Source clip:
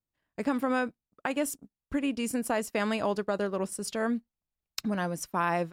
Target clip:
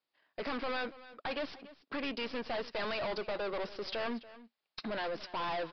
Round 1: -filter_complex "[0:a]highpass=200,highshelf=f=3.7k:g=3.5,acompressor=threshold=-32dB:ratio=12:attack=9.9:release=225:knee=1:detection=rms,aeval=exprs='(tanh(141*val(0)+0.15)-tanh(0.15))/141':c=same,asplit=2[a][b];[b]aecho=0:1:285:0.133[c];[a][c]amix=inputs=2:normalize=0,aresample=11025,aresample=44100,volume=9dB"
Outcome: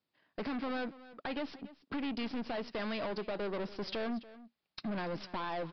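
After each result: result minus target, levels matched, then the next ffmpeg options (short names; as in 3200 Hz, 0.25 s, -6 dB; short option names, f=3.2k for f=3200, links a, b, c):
compressor: peak gain reduction +12 dB; 250 Hz band +5.5 dB
-filter_complex "[0:a]highpass=200,highshelf=f=3.7k:g=3.5,aeval=exprs='(tanh(141*val(0)+0.15)-tanh(0.15))/141':c=same,asplit=2[a][b];[b]aecho=0:1:285:0.133[c];[a][c]amix=inputs=2:normalize=0,aresample=11025,aresample=44100,volume=9dB"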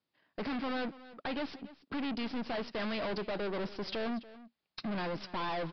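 250 Hz band +5.0 dB
-filter_complex "[0:a]highpass=470,highshelf=f=3.7k:g=3.5,aeval=exprs='(tanh(141*val(0)+0.15)-tanh(0.15))/141':c=same,asplit=2[a][b];[b]aecho=0:1:285:0.133[c];[a][c]amix=inputs=2:normalize=0,aresample=11025,aresample=44100,volume=9dB"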